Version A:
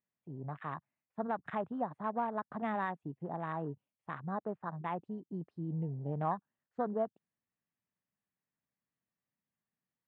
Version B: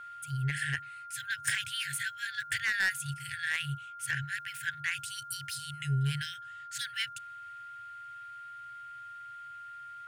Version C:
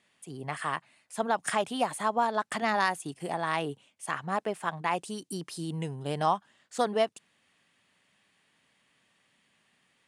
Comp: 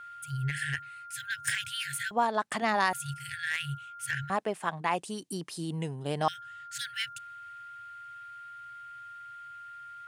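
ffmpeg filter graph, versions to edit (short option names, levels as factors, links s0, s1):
-filter_complex "[2:a]asplit=2[s0][s1];[1:a]asplit=3[s2][s3][s4];[s2]atrim=end=2.112[s5];[s0]atrim=start=2.108:end=2.932[s6];[s3]atrim=start=2.928:end=4.302[s7];[s1]atrim=start=4.298:end=6.282[s8];[s4]atrim=start=6.278[s9];[s5][s6]acrossfade=d=0.004:c1=hsin:c2=hsin[s10];[s10][s7]acrossfade=d=0.004:c1=hsin:c2=hsin[s11];[s11][s8]acrossfade=d=0.004:c1=hsin:c2=hsin[s12];[s12][s9]acrossfade=d=0.004:c1=hsin:c2=hsin"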